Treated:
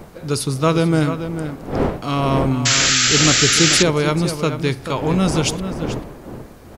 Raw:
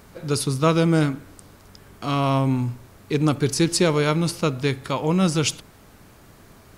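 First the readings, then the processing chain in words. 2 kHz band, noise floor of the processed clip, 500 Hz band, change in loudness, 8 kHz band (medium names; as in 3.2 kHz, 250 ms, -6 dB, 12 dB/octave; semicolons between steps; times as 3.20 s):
+10.0 dB, -40 dBFS, +3.5 dB, +5.0 dB, +12.5 dB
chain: wind noise 460 Hz -31 dBFS; echo from a far wall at 75 m, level -9 dB; painted sound noise, 2.65–3.83 s, 1.2–7.7 kHz -18 dBFS; trim +2 dB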